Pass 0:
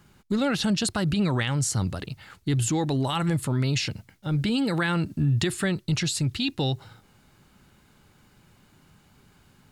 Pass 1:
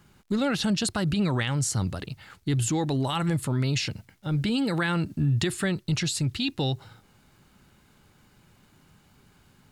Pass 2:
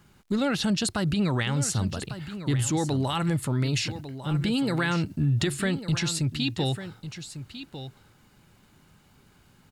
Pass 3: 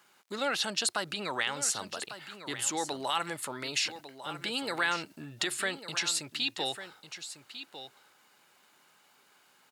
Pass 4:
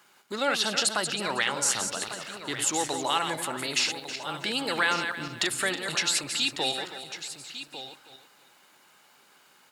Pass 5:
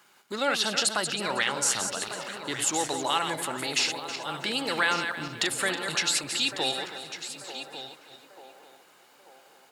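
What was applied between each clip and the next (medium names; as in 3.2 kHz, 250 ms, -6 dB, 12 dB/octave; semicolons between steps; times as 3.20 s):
crackle 100 per s -54 dBFS; trim -1 dB
delay 1149 ms -12 dB
high-pass 600 Hz 12 dB/octave
backward echo that repeats 160 ms, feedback 46%, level -7 dB; trim +4 dB
band-passed feedback delay 890 ms, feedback 55%, band-pass 660 Hz, level -11.5 dB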